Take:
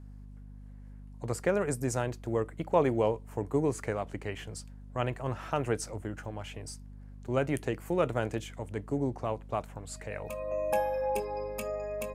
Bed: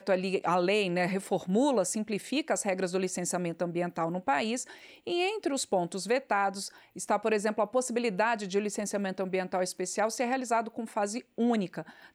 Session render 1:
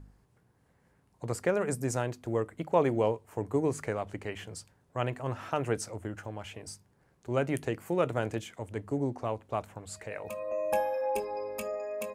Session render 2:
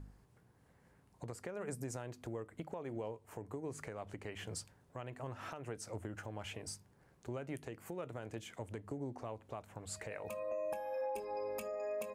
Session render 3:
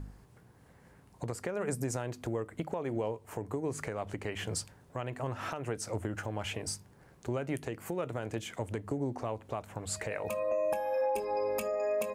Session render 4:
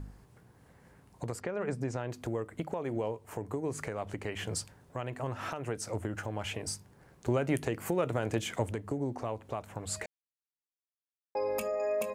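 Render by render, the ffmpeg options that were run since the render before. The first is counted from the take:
-af "bandreject=f=50:t=h:w=4,bandreject=f=100:t=h:w=4,bandreject=f=150:t=h:w=4,bandreject=f=200:t=h:w=4,bandreject=f=250:t=h:w=4"
-af "acompressor=threshold=-36dB:ratio=6,alimiter=level_in=7dB:limit=-24dB:level=0:latency=1:release=268,volume=-7dB"
-af "volume=8.5dB"
-filter_complex "[0:a]asettb=1/sr,asplit=3[a][b][c];[a]atrim=end=1.404[d];[b]atrim=start=1.4:end=2.1,asetpts=PTS-STARTPTS,afade=t=in:d=0.004:c=qsin,afade=t=out:st=0.696:d=0.004:c=qsin,lowpass=4k[e];[c]atrim=start=2.096[f];[d][e]acrossfade=d=0.004:c1=hsin:c2=qsin[g];[g][f]acrossfade=d=0.004:c1=qsin:c2=hsin,asettb=1/sr,asplit=3[h][i][j];[h]atrim=end=7.264[k];[i]atrim=start=7.26:end=8.71,asetpts=PTS-STARTPTS,afade=t=in:d=0.004:c=qsin,afade=t=out:st=1.446:d=0.004:c=qsin,acontrast=28[l];[j]atrim=start=8.706[m];[k][l]acrossfade=d=0.004:c1=hsin:c2=qsin[n];[n][m]acrossfade=d=0.004:c1=qsin:c2=hsin,asplit=3[o][p][q];[o]atrim=end=10.06,asetpts=PTS-STARTPTS,afade=t=out:st=10.056:d=0.004:c=hsin[r];[p]atrim=start=10.06:end=11.35,asetpts=PTS-STARTPTS,volume=0[s];[q]atrim=start=11.35,asetpts=PTS-STARTPTS,afade=t=in:d=0.004:c=hsin[t];[r][s][t]concat=n=3:v=0:a=1"

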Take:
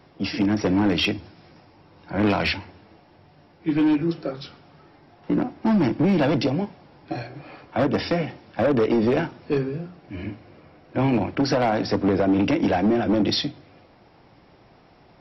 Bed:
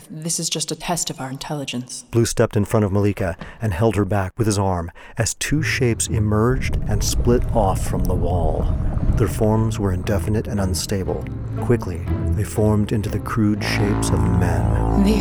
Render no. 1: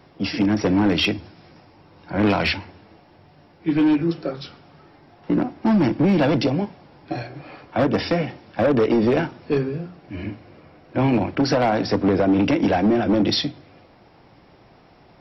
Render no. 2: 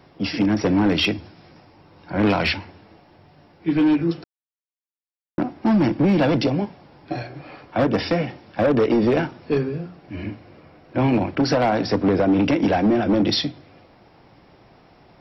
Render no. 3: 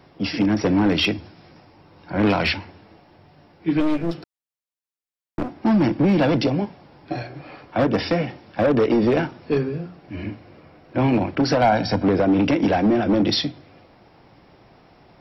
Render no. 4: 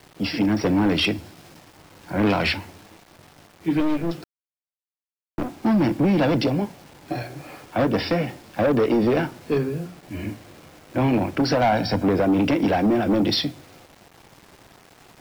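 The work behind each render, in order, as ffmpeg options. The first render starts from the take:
-af "volume=2dB"
-filter_complex "[0:a]asplit=3[a][b][c];[a]atrim=end=4.24,asetpts=PTS-STARTPTS,afade=t=out:st=4.236:d=0.004:c=hsin[d];[b]atrim=start=4.24:end=5.38,asetpts=PTS-STARTPTS,volume=0[e];[c]atrim=start=5.38,asetpts=PTS-STARTPTS,afade=t=in:d=0.004:c=hsin[f];[d][e][f]concat=n=3:v=0:a=1"
-filter_complex "[0:a]asettb=1/sr,asplit=3[a][b][c];[a]atrim=end=3.804[d];[b]atrim=start=3.8:end=5.57,asetpts=PTS-STARTPTS,afade=t=in:d=0.004:c=qsin,afade=t=out:st=1.766:d=0.004:c=qsin,aeval=exprs='clip(val(0),-1,0.0266)':c=same[e];[c]atrim=start=5.566[f];[d][e]acrossfade=d=0.004:c1=hsin:c2=qsin[g];[g][f]acrossfade=d=0.004:c1=qsin:c2=hsin,asettb=1/sr,asplit=3[h][i][j];[h]atrim=end=11.614[k];[i]atrim=start=11.61:end=12.04,asetpts=PTS-STARTPTS,afade=t=in:d=0.004:c=qsin,afade=t=out:st=0.426:d=0.004:c=qsin,aecho=1:1:1.3:0.65,atrim=end_sample=18963[l];[j]atrim=start=12.036[m];[k][l]acrossfade=d=0.004:c1=hsin:c2=qsin[n];[n][m]acrossfade=d=0.004:c1=qsin:c2=hsin"
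-af "acrusher=bits=7:mix=0:aa=0.000001,asoftclip=type=tanh:threshold=-12dB"

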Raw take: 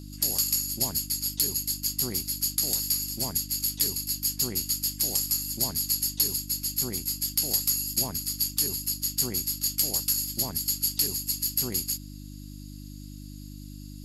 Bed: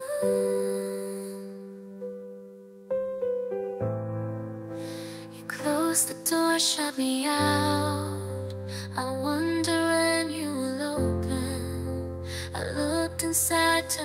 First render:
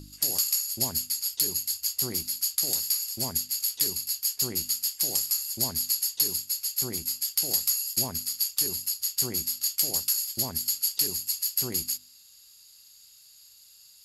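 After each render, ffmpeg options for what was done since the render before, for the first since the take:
-af "bandreject=f=50:t=h:w=4,bandreject=f=100:t=h:w=4,bandreject=f=150:t=h:w=4,bandreject=f=200:t=h:w=4,bandreject=f=250:t=h:w=4,bandreject=f=300:t=h:w=4"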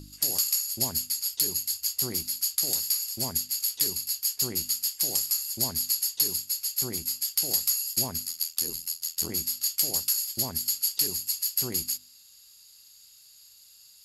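-filter_complex "[0:a]asettb=1/sr,asplit=3[a][b][c];[a]atrim=end=8.254[d];[b]atrim=start=8.25:end=9.29,asetpts=PTS-STARTPTS,afade=t=in:d=0.004:c=qsin,afade=t=out:st=1.036:d=0.004:c=qsin,aeval=exprs='val(0)*sin(2*PI*41*n/s)':c=same[e];[c]atrim=start=9.286[f];[d][e]acrossfade=d=0.004:c1=hsin:c2=qsin[g];[g][f]acrossfade=d=0.004:c1=qsin:c2=hsin"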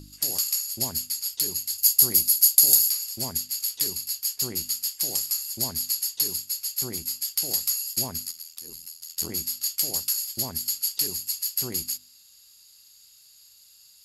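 -filter_complex "[0:a]asettb=1/sr,asplit=3[a][b][c];[a]atrim=end=1.784[d];[b]atrim=start=1.78:end=2.9,asetpts=PTS-STARTPTS,afade=t=in:d=0.004:c=qsin,afade=t=out:st=1.116:d=0.004:c=qsin,aemphasis=mode=production:type=50kf[e];[c]atrim=start=2.896[f];[d][e]acrossfade=d=0.004:c1=hsin:c2=qsin[g];[g][f]acrossfade=d=0.004:c1=qsin:c2=hsin,asettb=1/sr,asplit=3[h][i][j];[h]atrim=end=8.314[k];[i]atrim=start=8.31:end=9.1,asetpts=PTS-STARTPTS,afade=t=in:d=0.004:c=qsin,afade=t=out:st=0.786:d=0.004:c=qsin,acompressor=threshold=-37dB:ratio=4:attack=3.2:release=140:knee=1:detection=peak[l];[j]atrim=start=9.096[m];[k][l]acrossfade=d=0.004:c1=hsin:c2=qsin[n];[n][m]acrossfade=d=0.004:c1=qsin:c2=hsin"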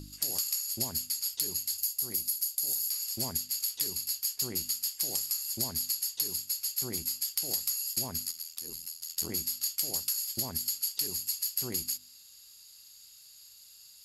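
-af "alimiter=limit=-13dB:level=0:latency=1:release=383,acompressor=threshold=-30dB:ratio=2.5"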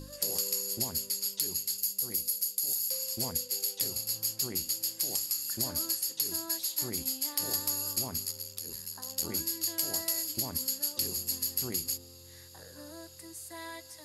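-filter_complex "[1:a]volume=-20.5dB[a];[0:a][a]amix=inputs=2:normalize=0"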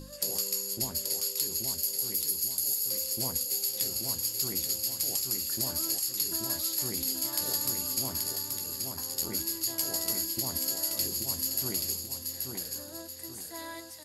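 -filter_complex "[0:a]asplit=2[a][b];[b]adelay=15,volume=-11dB[c];[a][c]amix=inputs=2:normalize=0,aecho=1:1:830|1660|2490|3320|4150:0.596|0.232|0.0906|0.0353|0.0138"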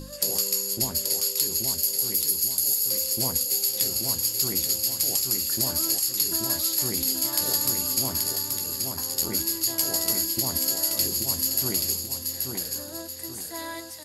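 -af "volume=6dB"

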